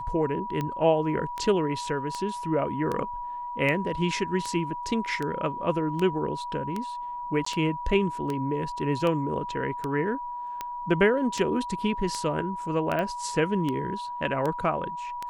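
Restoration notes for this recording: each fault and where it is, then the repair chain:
tick 78 rpm -17 dBFS
tone 970 Hz -32 dBFS
7.45–7.46 gap 14 ms
12.99 pop -18 dBFS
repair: de-click; notch 970 Hz, Q 30; interpolate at 7.45, 14 ms

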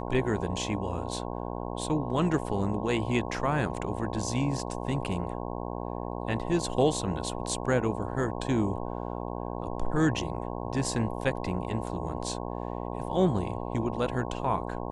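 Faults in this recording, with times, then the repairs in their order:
buzz 60 Hz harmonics 18 -35 dBFS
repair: de-hum 60 Hz, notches 18

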